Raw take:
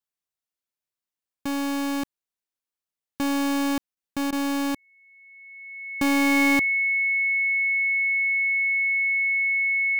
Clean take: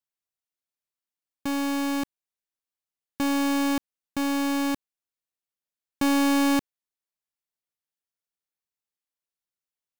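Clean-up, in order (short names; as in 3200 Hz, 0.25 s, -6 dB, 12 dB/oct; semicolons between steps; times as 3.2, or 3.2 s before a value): notch 2200 Hz, Q 30; interpolate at 3.95/4.31, 14 ms; gain correction +7 dB, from 7.02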